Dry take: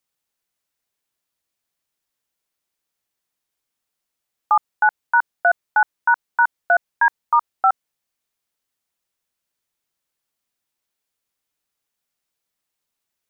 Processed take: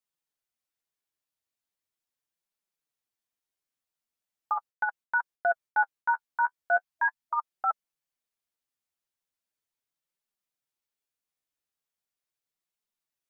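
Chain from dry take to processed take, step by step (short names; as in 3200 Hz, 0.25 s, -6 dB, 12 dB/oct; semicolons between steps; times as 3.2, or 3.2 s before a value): flange 0.39 Hz, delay 4.5 ms, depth 9.5 ms, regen +17%; 4.56–6.13 expander -36 dBFS; 6.84–7.34 spectral delete 330–660 Hz; gain -6.5 dB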